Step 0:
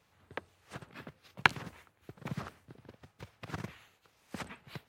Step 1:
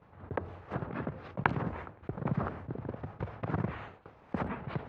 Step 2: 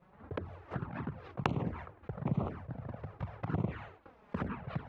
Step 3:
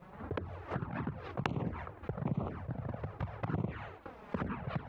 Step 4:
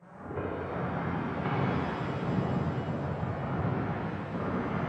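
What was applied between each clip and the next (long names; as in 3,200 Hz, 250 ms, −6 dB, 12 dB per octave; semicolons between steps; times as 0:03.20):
low-pass filter 1,100 Hz 12 dB per octave; downward expander −59 dBFS; envelope flattener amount 50%; level +2 dB
flanger swept by the level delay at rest 5.9 ms, full sweep at −28.5 dBFS
downward compressor 2 to 1, threshold −50 dBFS, peak gain reduction 14 dB; level +9.5 dB
hearing-aid frequency compression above 1,500 Hz 1.5 to 1; high-pass filter 85 Hz; reverb with rising layers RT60 3.1 s, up +7 semitones, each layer −8 dB, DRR −10.5 dB; level −3.5 dB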